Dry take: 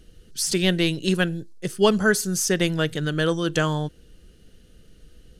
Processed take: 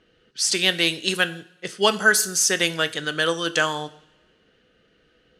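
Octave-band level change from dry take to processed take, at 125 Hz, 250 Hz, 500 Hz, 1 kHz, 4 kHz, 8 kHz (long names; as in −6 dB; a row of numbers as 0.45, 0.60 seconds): −11.0, −7.0, −2.0, +3.0, +5.5, +5.0 decibels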